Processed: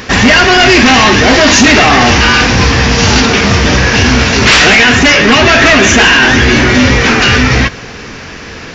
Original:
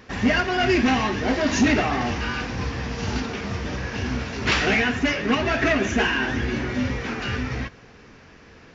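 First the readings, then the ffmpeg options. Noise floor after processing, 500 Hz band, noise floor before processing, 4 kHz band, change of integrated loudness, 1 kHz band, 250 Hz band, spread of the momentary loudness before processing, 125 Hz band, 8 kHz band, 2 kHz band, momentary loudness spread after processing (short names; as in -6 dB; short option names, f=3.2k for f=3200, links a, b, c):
-26 dBFS, +15.5 dB, -48 dBFS, +21.5 dB, +17.5 dB, +17.5 dB, +14.0 dB, 9 LU, +17.0 dB, n/a, +19.0 dB, 5 LU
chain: -af "highshelf=f=2.2k:g=7.5,apsyclip=22dB,volume=-1.5dB"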